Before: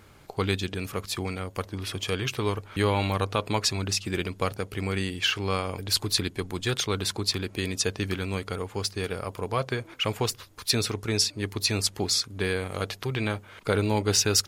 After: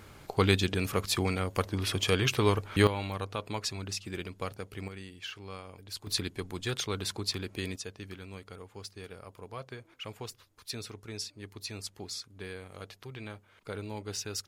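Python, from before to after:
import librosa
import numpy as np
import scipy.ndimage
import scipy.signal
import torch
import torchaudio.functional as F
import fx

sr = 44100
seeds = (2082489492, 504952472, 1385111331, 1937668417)

y = fx.gain(x, sr, db=fx.steps((0.0, 2.0), (2.87, -9.0), (4.88, -16.0), (6.07, -6.0), (7.76, -14.5)))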